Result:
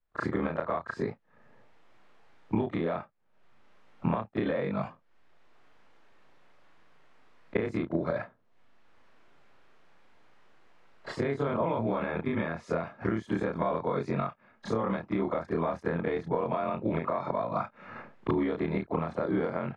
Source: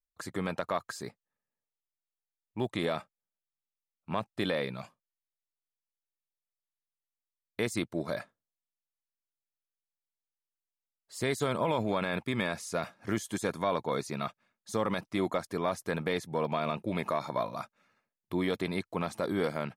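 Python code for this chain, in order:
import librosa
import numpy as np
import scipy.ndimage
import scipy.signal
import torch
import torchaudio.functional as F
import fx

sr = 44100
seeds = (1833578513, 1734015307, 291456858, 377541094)

y = fx.frame_reverse(x, sr, frame_ms=72.0)
y = fx.recorder_agc(y, sr, target_db=-21.5, rise_db_per_s=59.0, max_gain_db=30)
y = scipy.signal.sosfilt(scipy.signal.butter(2, 1700.0, 'lowpass', fs=sr, output='sos'), y)
y = fx.band_squash(y, sr, depth_pct=40)
y = y * librosa.db_to_amplitude(2.5)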